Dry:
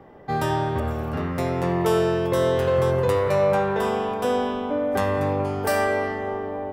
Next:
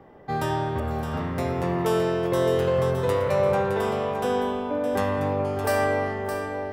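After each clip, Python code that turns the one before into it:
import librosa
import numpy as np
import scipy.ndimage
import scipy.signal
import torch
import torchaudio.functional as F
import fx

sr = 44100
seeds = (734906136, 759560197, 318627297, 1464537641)

y = x + 10.0 ** (-8.5 / 20.0) * np.pad(x, (int(615 * sr / 1000.0), 0))[:len(x)]
y = y * 10.0 ** (-2.5 / 20.0)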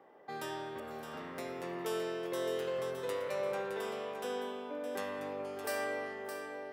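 y = scipy.signal.sosfilt(scipy.signal.butter(2, 380.0, 'highpass', fs=sr, output='sos'), x)
y = fx.dynamic_eq(y, sr, hz=830.0, q=0.91, threshold_db=-39.0, ratio=4.0, max_db=-8)
y = y * 10.0 ** (-7.5 / 20.0)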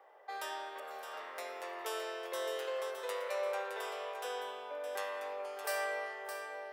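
y = scipy.signal.sosfilt(scipy.signal.butter(4, 530.0, 'highpass', fs=sr, output='sos'), x)
y = y * 10.0 ** (1.5 / 20.0)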